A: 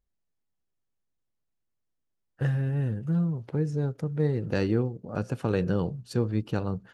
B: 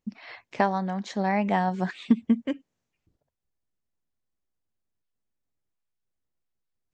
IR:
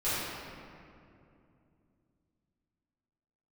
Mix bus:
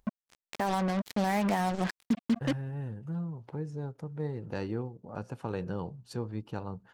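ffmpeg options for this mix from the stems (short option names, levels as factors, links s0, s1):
-filter_complex "[0:a]agate=range=0.0224:threshold=0.00398:ratio=3:detection=peak,equalizer=f=900:w=2.3:g=9,volume=0.335[s0];[1:a]acrusher=bits=4:mix=0:aa=0.5,volume=0.944[s1];[s0][s1]amix=inputs=2:normalize=0,acompressor=mode=upward:threshold=0.0126:ratio=2.5,alimiter=limit=0.119:level=0:latency=1:release=44"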